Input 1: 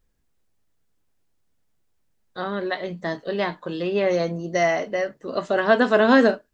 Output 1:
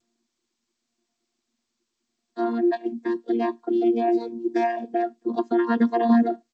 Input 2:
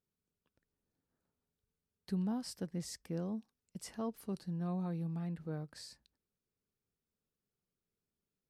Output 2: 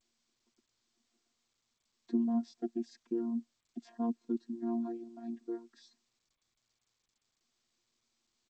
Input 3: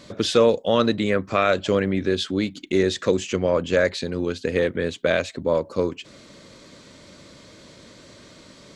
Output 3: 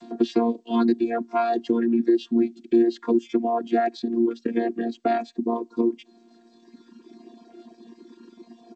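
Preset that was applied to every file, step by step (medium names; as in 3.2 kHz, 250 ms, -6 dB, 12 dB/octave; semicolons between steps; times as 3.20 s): vocoder on a held chord bare fifth, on A#3; reverb removal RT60 1.9 s; bass shelf 310 Hz +8 dB; band-stop 2.5 kHz, Q 25; comb 3.1 ms, depth 58%; compression 2.5:1, threshold -18 dBFS; G.722 64 kbps 16 kHz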